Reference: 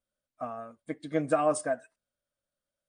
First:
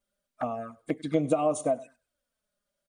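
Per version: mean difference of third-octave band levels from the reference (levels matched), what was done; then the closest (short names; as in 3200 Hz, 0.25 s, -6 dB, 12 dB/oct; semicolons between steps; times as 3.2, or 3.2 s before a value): 3.5 dB: feedback echo 98 ms, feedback 26%, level -23 dB; compressor, threshold -28 dBFS, peak gain reduction 8.5 dB; envelope flanger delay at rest 5 ms, full sweep at -33.5 dBFS; gain +8.5 dB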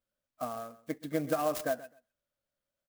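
8.5 dB: compressor, threshold -26 dBFS, peak gain reduction 7 dB; on a send: feedback echo 0.129 s, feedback 17%, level -17.5 dB; on the sum: clock jitter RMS 0.034 ms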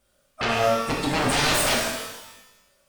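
18.5 dB: limiter -22.5 dBFS, peak gain reduction 8.5 dB; sine folder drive 15 dB, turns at -22.5 dBFS; shimmer reverb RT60 1 s, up +12 st, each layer -8 dB, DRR -2 dB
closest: first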